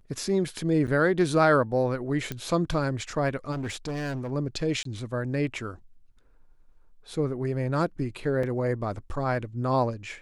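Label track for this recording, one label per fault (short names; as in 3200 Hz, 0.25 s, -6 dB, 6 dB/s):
0.870000	0.880000	gap 8 ms
2.320000	2.320000	pop -17 dBFS
3.510000	4.320000	clipped -28 dBFS
4.830000	4.850000	gap 23 ms
8.430000	8.430000	gap 4 ms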